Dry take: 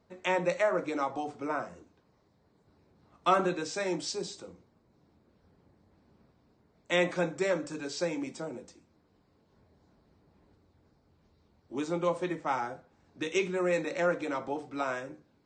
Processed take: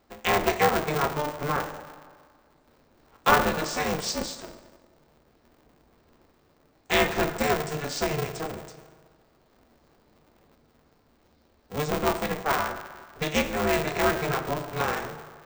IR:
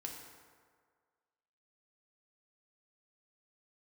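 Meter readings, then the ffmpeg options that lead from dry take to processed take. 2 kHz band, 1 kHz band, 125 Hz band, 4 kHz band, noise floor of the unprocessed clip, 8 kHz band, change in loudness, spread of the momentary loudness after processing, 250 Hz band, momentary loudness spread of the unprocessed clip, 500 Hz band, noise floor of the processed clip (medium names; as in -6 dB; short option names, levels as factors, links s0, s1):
+7.5 dB, +7.0 dB, +9.0 dB, +8.5 dB, -69 dBFS, +8.5 dB, +5.0 dB, 15 LU, +3.5 dB, 13 LU, +3.0 dB, -64 dBFS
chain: -filter_complex "[0:a]asplit=2[s0][s1];[1:a]atrim=start_sample=2205,lowshelf=f=270:g=-12[s2];[s1][s2]afir=irnorm=-1:irlink=0,volume=1.26[s3];[s0][s3]amix=inputs=2:normalize=0,aeval=exprs='val(0)*sgn(sin(2*PI*150*n/s))':c=same,volume=1.12"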